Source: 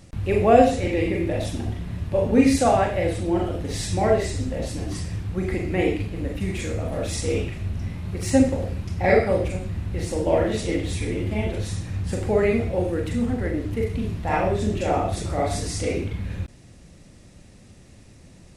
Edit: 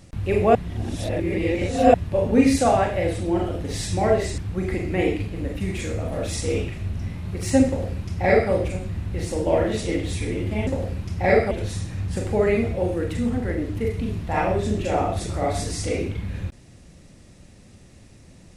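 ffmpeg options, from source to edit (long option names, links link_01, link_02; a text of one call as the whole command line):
ffmpeg -i in.wav -filter_complex "[0:a]asplit=6[link_01][link_02][link_03][link_04][link_05][link_06];[link_01]atrim=end=0.552[link_07];[link_02]atrim=start=0.548:end=1.942,asetpts=PTS-STARTPTS,areverse[link_08];[link_03]atrim=start=1.938:end=4.382[link_09];[link_04]atrim=start=5.178:end=11.472[link_10];[link_05]atrim=start=8.468:end=9.312[link_11];[link_06]atrim=start=11.468[link_12];[link_07][link_08]acrossfade=duration=0.004:curve1=hsin:curve2=hsin[link_13];[link_13][link_09]acrossfade=duration=0.004:curve1=hsin:curve2=hsin[link_14];[link_14][link_10]acrossfade=duration=0.004:curve1=hsin:curve2=hsin[link_15];[link_15][link_11]acrossfade=duration=0.004:curve1=hsin:curve2=hsin[link_16];[link_16][link_12]acrossfade=duration=0.004:curve1=hsin:curve2=hsin" out.wav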